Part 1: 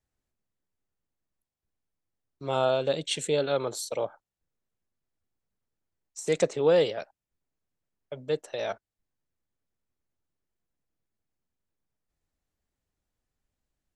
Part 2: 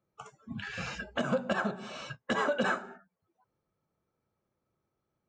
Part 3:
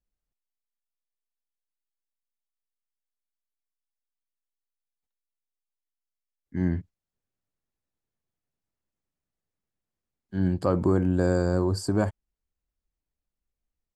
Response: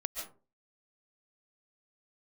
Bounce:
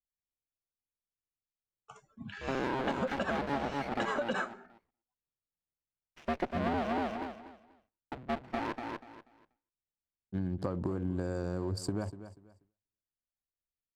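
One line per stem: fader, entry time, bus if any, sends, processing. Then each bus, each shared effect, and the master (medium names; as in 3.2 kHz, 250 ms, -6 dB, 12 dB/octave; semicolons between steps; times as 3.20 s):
-3.5 dB, 0.00 s, no send, echo send -4.5 dB, cycle switcher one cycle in 2, inverted; low-pass 2.7 kHz 24 dB/octave; sliding maximum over 5 samples
+1.5 dB, 1.70 s, no send, no echo send, upward expansion 1.5:1, over -39 dBFS; auto duck -19 dB, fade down 0.85 s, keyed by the third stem
-2.0 dB, 0.00 s, no send, echo send -16 dB, local Wiener filter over 25 samples; compression, threshold -25 dBFS, peak gain reduction 8 dB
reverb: none
echo: feedback delay 242 ms, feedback 24%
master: gate with hold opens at -59 dBFS; compression 6:1, threshold -29 dBFS, peak gain reduction 9.5 dB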